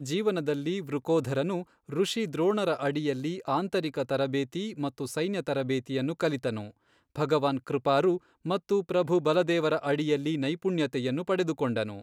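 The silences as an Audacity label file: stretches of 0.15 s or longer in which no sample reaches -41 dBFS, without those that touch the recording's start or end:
1.630000	1.890000	silence
6.700000	7.150000	silence
8.180000	8.450000	silence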